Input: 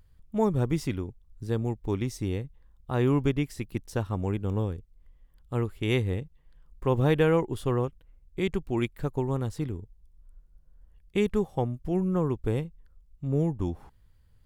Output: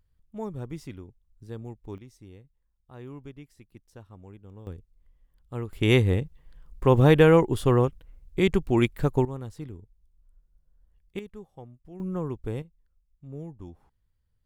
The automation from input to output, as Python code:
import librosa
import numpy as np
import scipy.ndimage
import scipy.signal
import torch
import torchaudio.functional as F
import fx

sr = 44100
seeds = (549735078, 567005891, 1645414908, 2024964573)

y = fx.gain(x, sr, db=fx.steps((0.0, -10.0), (1.98, -18.0), (4.67, -5.0), (5.73, 6.0), (9.25, -7.0), (11.19, -17.0), (12.0, -4.5), (12.62, -13.0)))